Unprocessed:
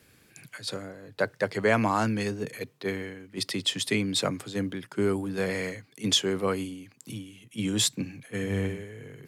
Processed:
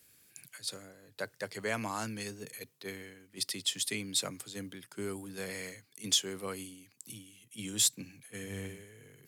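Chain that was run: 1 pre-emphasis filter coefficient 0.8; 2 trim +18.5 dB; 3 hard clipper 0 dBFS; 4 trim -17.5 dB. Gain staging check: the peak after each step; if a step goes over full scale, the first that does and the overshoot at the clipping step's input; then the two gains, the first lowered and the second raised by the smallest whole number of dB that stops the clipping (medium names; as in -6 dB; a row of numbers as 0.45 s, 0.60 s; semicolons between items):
-15.5 dBFS, +3.0 dBFS, 0.0 dBFS, -17.5 dBFS; step 2, 3.0 dB; step 2 +15.5 dB, step 4 -14.5 dB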